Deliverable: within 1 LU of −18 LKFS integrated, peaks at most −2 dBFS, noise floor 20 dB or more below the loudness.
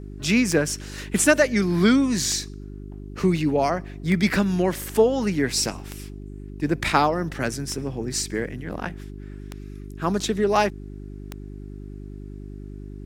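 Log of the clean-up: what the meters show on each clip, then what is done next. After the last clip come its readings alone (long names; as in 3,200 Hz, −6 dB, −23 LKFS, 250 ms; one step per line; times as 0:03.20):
number of clicks 7; mains hum 50 Hz; hum harmonics up to 400 Hz; level of the hum −34 dBFS; integrated loudness −23.0 LKFS; sample peak −3.5 dBFS; target loudness −18.0 LKFS
→ click removal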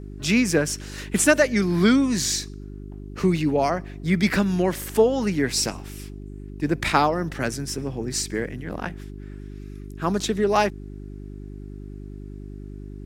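number of clicks 0; mains hum 50 Hz; hum harmonics up to 400 Hz; level of the hum −34 dBFS
→ hum removal 50 Hz, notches 8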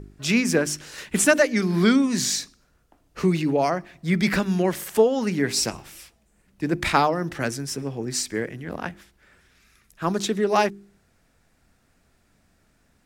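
mains hum none found; integrated loudness −23.0 LKFS; sample peak −4.0 dBFS; target loudness −18.0 LKFS
→ level +5 dB
brickwall limiter −2 dBFS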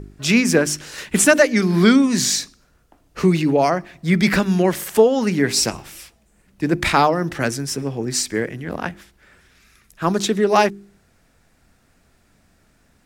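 integrated loudness −18.5 LKFS; sample peak −2.0 dBFS; background noise floor −59 dBFS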